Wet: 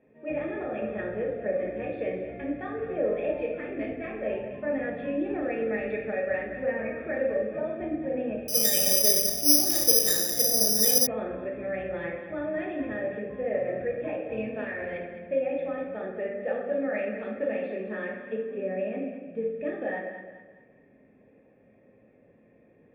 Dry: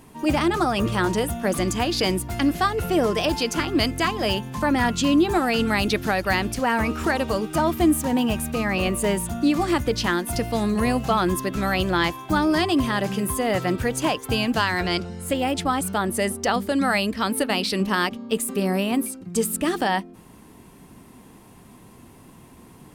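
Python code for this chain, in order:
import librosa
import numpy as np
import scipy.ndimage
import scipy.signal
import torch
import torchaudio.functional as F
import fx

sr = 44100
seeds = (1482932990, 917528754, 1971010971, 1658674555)

y = fx.formant_cascade(x, sr, vowel='e')
y = fx.notch_comb(y, sr, f0_hz=970.0)
y = fx.echo_thinned(y, sr, ms=211, feedback_pct=38, hz=200.0, wet_db=-10.5)
y = fx.room_shoebox(y, sr, seeds[0], volume_m3=280.0, walls='mixed', distance_m=1.4)
y = fx.resample_bad(y, sr, factor=8, down='none', up='zero_stuff', at=(8.48, 11.07))
y = y * 10.0 ** (-1.0 / 20.0)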